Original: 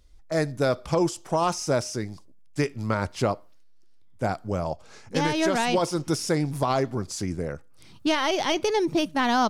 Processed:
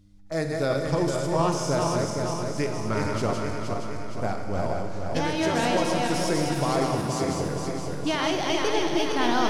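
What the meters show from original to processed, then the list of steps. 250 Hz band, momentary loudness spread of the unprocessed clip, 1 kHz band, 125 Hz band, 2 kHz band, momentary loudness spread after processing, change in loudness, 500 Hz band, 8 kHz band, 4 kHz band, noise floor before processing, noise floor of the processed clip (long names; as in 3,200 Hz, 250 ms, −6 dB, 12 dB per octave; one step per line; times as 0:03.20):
0.0 dB, 9 LU, 0.0 dB, +1.5 dB, 0.0 dB, 7 LU, 0.0 dB, +0.5 dB, +0.5 dB, +0.5 dB, −49 dBFS, −31 dBFS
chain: feedback delay that plays each chunk backwards 234 ms, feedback 74%, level −3.5 dB
hum with harmonics 100 Hz, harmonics 3, −55 dBFS
four-comb reverb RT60 2.1 s, combs from 33 ms, DRR 5.5 dB
level −3.5 dB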